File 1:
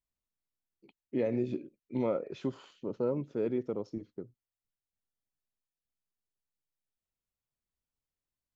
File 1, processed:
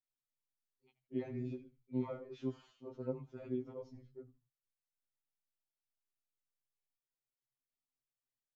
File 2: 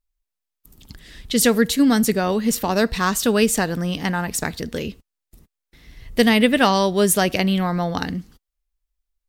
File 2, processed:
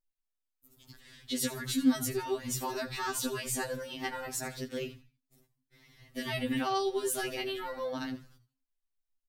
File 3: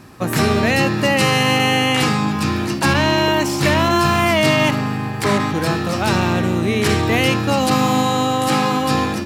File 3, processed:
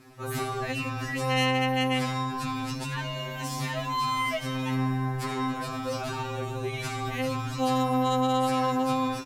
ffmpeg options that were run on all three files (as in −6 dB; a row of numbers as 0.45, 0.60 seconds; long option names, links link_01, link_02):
-filter_complex "[0:a]alimiter=limit=-12.5dB:level=0:latency=1:release=21,asplit=4[link_01][link_02][link_03][link_04];[link_02]adelay=81,afreqshift=-100,volume=-15.5dB[link_05];[link_03]adelay=162,afreqshift=-200,volume=-24.9dB[link_06];[link_04]adelay=243,afreqshift=-300,volume=-34.2dB[link_07];[link_01][link_05][link_06][link_07]amix=inputs=4:normalize=0,afftfilt=real='re*2.45*eq(mod(b,6),0)':imag='im*2.45*eq(mod(b,6),0)':win_size=2048:overlap=0.75,volume=-7.5dB"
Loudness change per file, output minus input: −8.5, −14.0, −12.0 LU